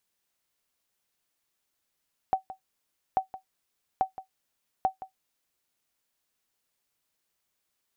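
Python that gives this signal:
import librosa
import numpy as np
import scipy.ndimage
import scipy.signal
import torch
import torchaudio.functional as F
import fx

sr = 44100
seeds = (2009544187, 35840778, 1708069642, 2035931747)

y = fx.sonar_ping(sr, hz=761.0, decay_s=0.12, every_s=0.84, pings=4, echo_s=0.17, echo_db=-15.5, level_db=-15.0)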